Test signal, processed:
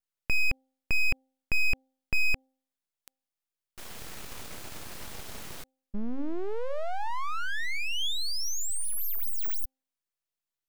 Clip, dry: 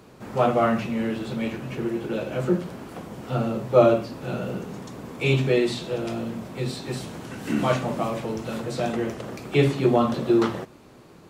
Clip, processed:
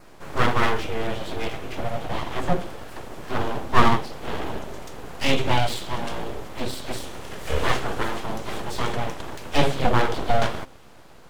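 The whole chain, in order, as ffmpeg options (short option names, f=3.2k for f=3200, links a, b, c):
-af "aeval=exprs='abs(val(0))':c=same,adynamicequalizer=threshold=0.00224:dfrequency=3300:dqfactor=6.4:tfrequency=3300:tqfactor=6.4:attack=5:release=100:ratio=0.375:range=2:mode=boostabove:tftype=bell,bandreject=f=262.7:t=h:w=4,bandreject=f=525.4:t=h:w=4,bandreject=f=788.1:t=h:w=4,volume=3dB"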